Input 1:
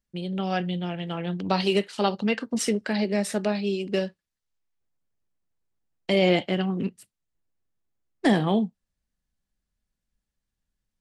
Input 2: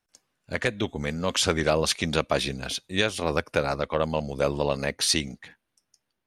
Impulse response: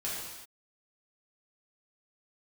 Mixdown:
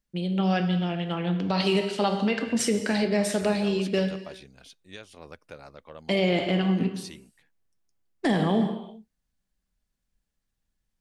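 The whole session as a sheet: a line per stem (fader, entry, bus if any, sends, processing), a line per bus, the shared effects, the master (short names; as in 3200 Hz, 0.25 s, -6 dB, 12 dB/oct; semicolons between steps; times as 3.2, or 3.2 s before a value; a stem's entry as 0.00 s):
-0.5 dB, 0.00 s, send -9 dB, dry
-19.5 dB, 1.95 s, no send, dry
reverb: on, pre-delay 3 ms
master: limiter -14 dBFS, peak gain reduction 7 dB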